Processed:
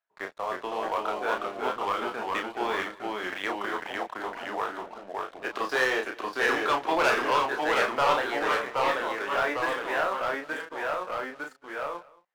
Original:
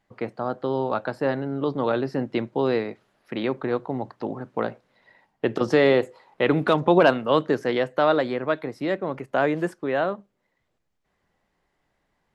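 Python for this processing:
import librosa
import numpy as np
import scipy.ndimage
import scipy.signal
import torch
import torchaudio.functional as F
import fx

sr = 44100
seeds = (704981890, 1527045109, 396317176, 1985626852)

y = fx.pitch_glide(x, sr, semitones=-3.0, runs='ending unshifted')
y = scipy.signal.sosfilt(scipy.signal.butter(2, 1200.0, 'highpass', fs=sr, output='sos'), y)
y = fx.high_shelf(y, sr, hz=2300.0, db=-10.0)
y = fx.leveller(y, sr, passes=3)
y = fx.doubler(y, sr, ms=31.0, db=-5)
y = y + 10.0 ** (-22.0 / 20.0) * np.pad(y, (int(198 * sr / 1000.0), 0))[:len(y)]
y = fx.echo_pitch(y, sr, ms=299, semitones=-1, count=2, db_per_echo=-3.0)
y = y * 10.0 ** (-2.0 / 20.0)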